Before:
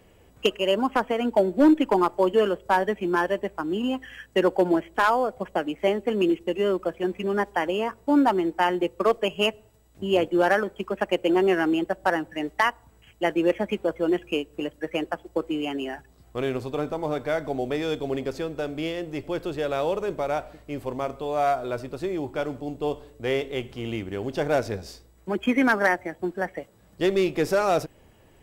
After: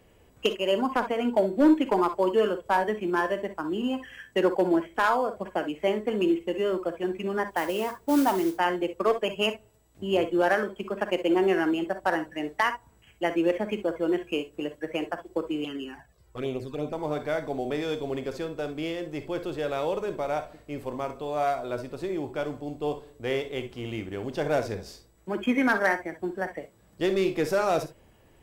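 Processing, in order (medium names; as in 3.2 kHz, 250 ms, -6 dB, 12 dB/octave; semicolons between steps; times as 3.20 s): 7.50–8.56 s: modulation noise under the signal 18 dB; gated-style reverb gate 80 ms rising, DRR 9 dB; 15.64–16.93 s: touch-sensitive flanger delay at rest 2.5 ms, full sweep at -22.5 dBFS; trim -3 dB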